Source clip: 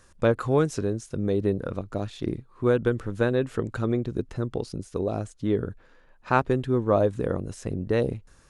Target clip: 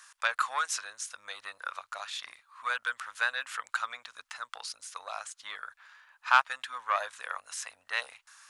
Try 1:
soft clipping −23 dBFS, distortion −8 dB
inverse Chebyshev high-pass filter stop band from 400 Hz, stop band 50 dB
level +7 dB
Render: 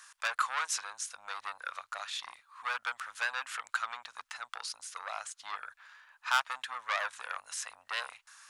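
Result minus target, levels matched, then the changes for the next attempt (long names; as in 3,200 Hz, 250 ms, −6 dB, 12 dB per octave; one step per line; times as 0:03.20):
soft clipping: distortion +12 dB
change: soft clipping −12 dBFS, distortion −20 dB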